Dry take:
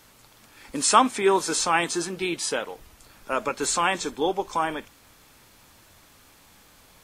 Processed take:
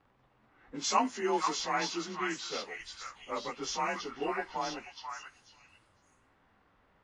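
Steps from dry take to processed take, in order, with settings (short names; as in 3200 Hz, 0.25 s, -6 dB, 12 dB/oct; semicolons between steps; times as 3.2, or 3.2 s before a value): inharmonic rescaling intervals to 92%; low-pass opened by the level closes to 1500 Hz, open at -21.5 dBFS; delay with a stepping band-pass 0.487 s, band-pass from 1500 Hz, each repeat 1.4 oct, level 0 dB; gain -8 dB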